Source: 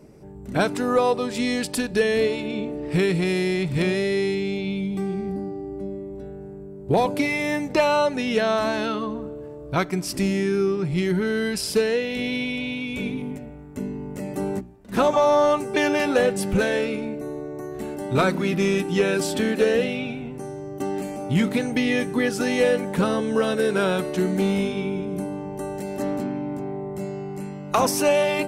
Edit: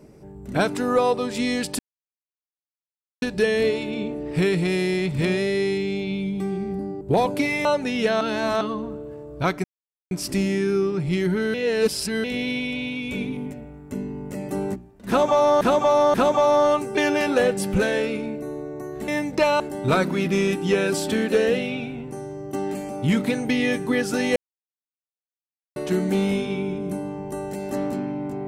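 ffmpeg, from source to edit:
ffmpeg -i in.wav -filter_complex "[0:a]asplit=15[link_01][link_02][link_03][link_04][link_05][link_06][link_07][link_08][link_09][link_10][link_11][link_12][link_13][link_14][link_15];[link_01]atrim=end=1.79,asetpts=PTS-STARTPTS,afade=type=out:start_time=1.786:duration=0.004:curve=hsin,apad=pad_dur=1.43[link_16];[link_02]atrim=start=1.79:end=5.582,asetpts=PTS-STARTPTS,afade=type=in:duration=0.004:curve=hsin[link_17];[link_03]atrim=start=6.808:end=7.452[link_18];[link_04]atrim=start=7.968:end=8.532[link_19];[link_05]atrim=start=8.528:end=8.932,asetpts=PTS-STARTPTS,areverse[link_20];[link_06]atrim=start=8.928:end=9.96,asetpts=PTS-STARTPTS,afade=type=out:start_time=1.028:duration=0.004:curve=hsin,apad=pad_dur=0.47[link_21];[link_07]atrim=start=9.96:end=11.392,asetpts=PTS-STARTPTS,afade=type=in:duration=0.004:curve=hsin[link_22];[link_08]atrim=start=11.388:end=12.092,asetpts=PTS-STARTPTS,areverse[link_23];[link_09]atrim=start=12.088:end=15.462[link_24];[link_10]atrim=start=14.928:end=15.462[link_25];[link_11]atrim=start=14.928:end=17.872[link_26];[link_12]atrim=start=7.448:end=7.972[link_27];[link_13]atrim=start=17.868:end=22.63,asetpts=PTS-STARTPTS,afade=type=out:start_time=4.758:duration=0.004:curve=hsin[link_28];[link_14]atrim=start=22.63:end=24.03,asetpts=PTS-STARTPTS,volume=0[link_29];[link_15]atrim=start=24.03,asetpts=PTS-STARTPTS,afade=type=in:duration=0.004:curve=hsin[link_30];[link_16][link_17]concat=n=2:v=0:a=1[link_31];[link_31][link_18]acrossfade=duration=0.004:curve1=hsin:curve2=hsin[link_32];[link_32][link_19]acrossfade=duration=0.004:curve1=hsin:curve2=hsin[link_33];[link_33][link_20]acrossfade=duration=0.004:curve1=hsin:curve2=hsin[link_34];[link_21][link_22]concat=n=2:v=0:a=1[link_35];[link_34][link_35]acrossfade=duration=0.004:curve1=hsin:curve2=hsin[link_36];[link_36][link_23]acrossfade=duration=0.004:curve1=hsin:curve2=hsin[link_37];[link_37][link_24]acrossfade=duration=0.004:curve1=hsin:curve2=hsin[link_38];[link_38][link_25]acrossfade=duration=0.004:curve1=hsin:curve2=hsin[link_39];[link_39][link_26]acrossfade=duration=0.004:curve1=hsin:curve2=hsin[link_40];[link_40][link_27]acrossfade=duration=0.004:curve1=hsin:curve2=hsin[link_41];[link_28][link_29][link_30]concat=n=3:v=0:a=1[link_42];[link_41][link_42]acrossfade=duration=0.004:curve1=hsin:curve2=hsin" out.wav

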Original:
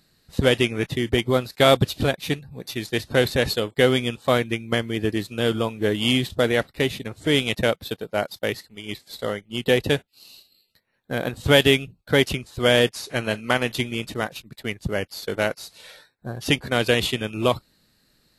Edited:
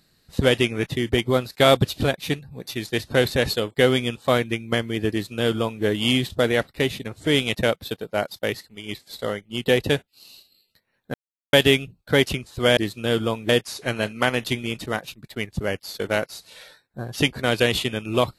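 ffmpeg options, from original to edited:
ffmpeg -i in.wav -filter_complex "[0:a]asplit=5[link_01][link_02][link_03][link_04][link_05];[link_01]atrim=end=11.14,asetpts=PTS-STARTPTS,afade=type=out:start_time=11.136:duration=0.004:curve=hsin[link_06];[link_02]atrim=start=11.14:end=11.53,asetpts=PTS-STARTPTS,volume=0[link_07];[link_03]atrim=start=11.53:end=12.772,asetpts=PTS-STARTPTS,afade=type=in:duration=0.004:curve=hsin[link_08];[link_04]atrim=start=5.108:end=5.832[link_09];[link_05]atrim=start=12.768[link_10];[link_06][link_07][link_08]concat=n=3:v=0:a=1[link_11];[link_11][link_09]acrossfade=duration=0.004:curve1=hsin:curve2=hsin[link_12];[link_12][link_10]acrossfade=duration=0.004:curve1=hsin:curve2=hsin" out.wav

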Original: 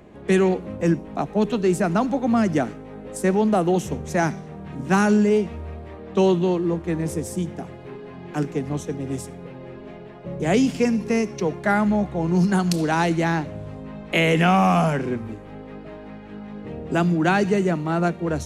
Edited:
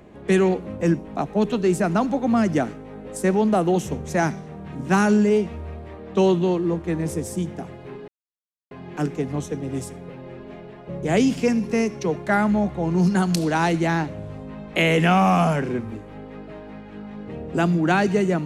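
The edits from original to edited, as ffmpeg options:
ffmpeg -i in.wav -filter_complex "[0:a]asplit=2[link_01][link_02];[link_01]atrim=end=8.08,asetpts=PTS-STARTPTS,afade=type=out:start_time=8.076:duration=0.004:curve=hsin,apad=pad_dur=0.63[link_03];[link_02]atrim=start=8.08,asetpts=PTS-STARTPTS,afade=type=in:duration=0.004:curve=hsin[link_04];[link_03][link_04]concat=n=2:v=0:a=1" out.wav

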